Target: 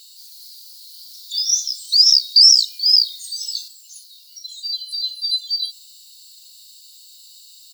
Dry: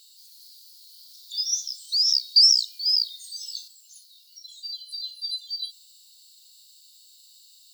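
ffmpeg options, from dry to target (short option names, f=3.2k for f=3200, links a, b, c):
-af "equalizer=f=3.3k:w=7.1:g=-3,aecho=1:1:3.7:0.44,alimiter=level_in=9dB:limit=-1dB:release=50:level=0:latency=1,volume=-1dB"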